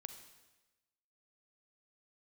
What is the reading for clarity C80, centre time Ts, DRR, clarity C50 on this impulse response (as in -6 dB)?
10.5 dB, 17 ms, 8.0 dB, 8.5 dB